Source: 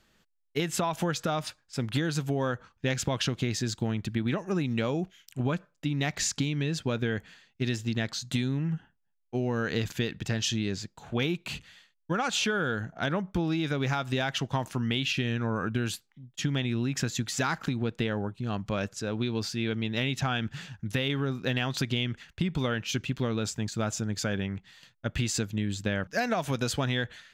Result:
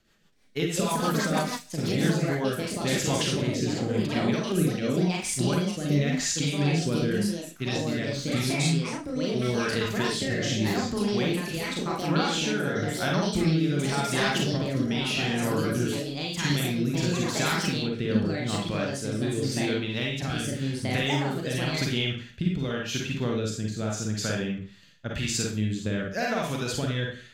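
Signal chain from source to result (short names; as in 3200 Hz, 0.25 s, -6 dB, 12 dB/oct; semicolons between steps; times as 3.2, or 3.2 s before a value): Schroeder reverb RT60 0.41 s, DRR -1 dB; echoes that change speed 0.324 s, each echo +4 st, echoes 2; rotary speaker horn 6.3 Hz, later 0.9 Hz, at 1.71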